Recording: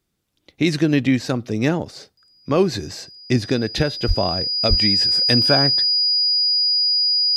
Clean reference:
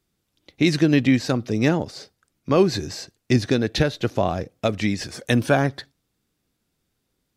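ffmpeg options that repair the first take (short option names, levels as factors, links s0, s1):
-filter_complex "[0:a]bandreject=f=4900:w=30,asplit=3[s0][s1][s2];[s0]afade=t=out:st=4.07:d=0.02[s3];[s1]highpass=f=140:w=0.5412,highpass=f=140:w=1.3066,afade=t=in:st=4.07:d=0.02,afade=t=out:st=4.19:d=0.02[s4];[s2]afade=t=in:st=4.19:d=0.02[s5];[s3][s4][s5]amix=inputs=3:normalize=0,asplit=3[s6][s7][s8];[s6]afade=t=out:st=4.69:d=0.02[s9];[s7]highpass=f=140:w=0.5412,highpass=f=140:w=1.3066,afade=t=in:st=4.69:d=0.02,afade=t=out:st=4.81:d=0.02[s10];[s8]afade=t=in:st=4.81:d=0.02[s11];[s9][s10][s11]amix=inputs=3:normalize=0"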